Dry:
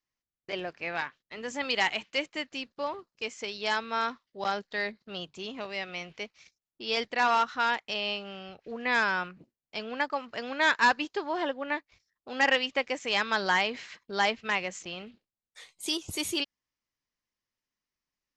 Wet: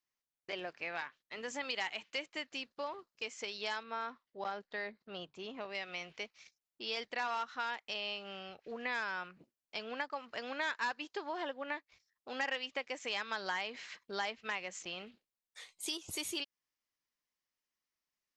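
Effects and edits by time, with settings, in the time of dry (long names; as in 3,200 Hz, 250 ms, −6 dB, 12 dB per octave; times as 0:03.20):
0:03.83–0:05.75: high-shelf EQ 3,000 Hz −12 dB
whole clip: low-shelf EQ 270 Hz −9 dB; downward compressor 2.5 to 1, threshold −36 dBFS; level −2 dB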